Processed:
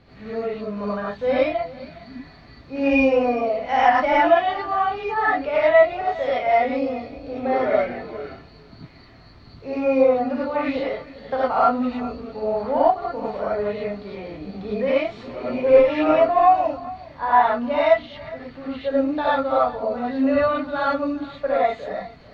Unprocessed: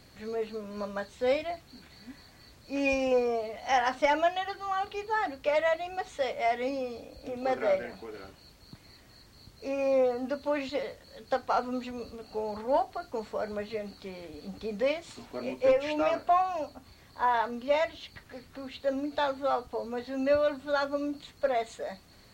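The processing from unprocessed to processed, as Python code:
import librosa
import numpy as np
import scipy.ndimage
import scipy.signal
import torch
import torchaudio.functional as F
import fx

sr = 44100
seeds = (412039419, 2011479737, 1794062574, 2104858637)

y = fx.air_absorb(x, sr, metres=290.0)
y = y + 10.0 ** (-19.0 / 20.0) * np.pad(y, (int(410 * sr / 1000.0), 0))[:len(y)]
y = fx.rev_gated(y, sr, seeds[0], gate_ms=130, shape='rising', drr_db=-7.5)
y = y * 10.0 ** (2.5 / 20.0)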